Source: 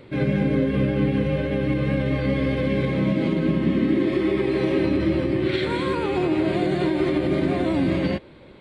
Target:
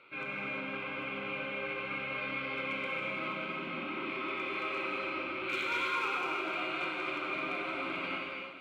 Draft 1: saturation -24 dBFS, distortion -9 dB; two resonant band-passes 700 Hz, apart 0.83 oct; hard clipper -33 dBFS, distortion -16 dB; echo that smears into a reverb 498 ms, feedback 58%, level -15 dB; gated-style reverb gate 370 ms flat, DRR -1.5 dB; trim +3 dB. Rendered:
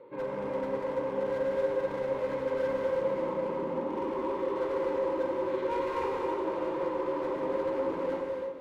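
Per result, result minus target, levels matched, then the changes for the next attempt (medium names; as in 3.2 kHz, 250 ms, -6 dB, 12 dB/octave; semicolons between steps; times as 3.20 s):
2 kHz band -14.0 dB; saturation: distortion +9 dB
change: two resonant band-passes 1.8 kHz, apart 0.83 oct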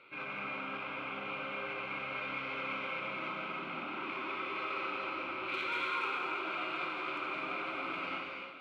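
saturation: distortion +9 dB
change: saturation -15.5 dBFS, distortion -18 dB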